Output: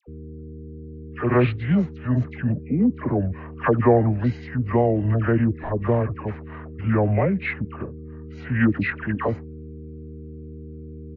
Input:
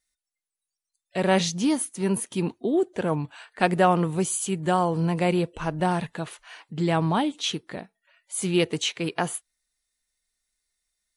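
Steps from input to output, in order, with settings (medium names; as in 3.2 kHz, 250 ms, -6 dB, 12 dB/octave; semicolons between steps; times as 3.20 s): low-pass 3.6 kHz 24 dB/octave; mains buzz 120 Hz, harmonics 6, -41 dBFS -4 dB/octave; phase dispersion lows, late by 73 ms, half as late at 1.5 kHz; pitch shift -7.5 st; trim +3.5 dB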